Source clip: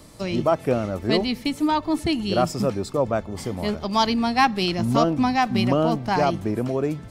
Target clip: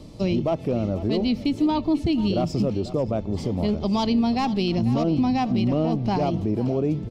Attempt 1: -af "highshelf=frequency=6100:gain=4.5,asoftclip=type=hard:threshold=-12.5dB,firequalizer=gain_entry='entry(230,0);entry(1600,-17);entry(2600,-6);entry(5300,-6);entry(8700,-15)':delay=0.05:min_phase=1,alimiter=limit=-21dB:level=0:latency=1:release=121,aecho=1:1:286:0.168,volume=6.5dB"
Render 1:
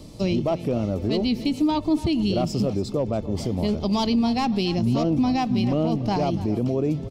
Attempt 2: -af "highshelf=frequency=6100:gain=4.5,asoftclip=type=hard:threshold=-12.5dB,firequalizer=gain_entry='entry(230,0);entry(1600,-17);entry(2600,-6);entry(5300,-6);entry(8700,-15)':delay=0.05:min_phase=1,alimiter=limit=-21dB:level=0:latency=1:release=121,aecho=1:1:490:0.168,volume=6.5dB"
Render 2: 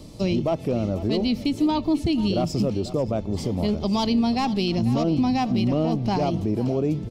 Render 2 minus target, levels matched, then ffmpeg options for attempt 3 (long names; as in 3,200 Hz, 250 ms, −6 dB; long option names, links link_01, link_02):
8,000 Hz band +5.0 dB
-af "highshelf=frequency=6100:gain=-5.5,asoftclip=type=hard:threshold=-12.5dB,firequalizer=gain_entry='entry(230,0);entry(1600,-17);entry(2600,-6);entry(5300,-6);entry(8700,-15)':delay=0.05:min_phase=1,alimiter=limit=-21dB:level=0:latency=1:release=121,aecho=1:1:490:0.168,volume=6.5dB"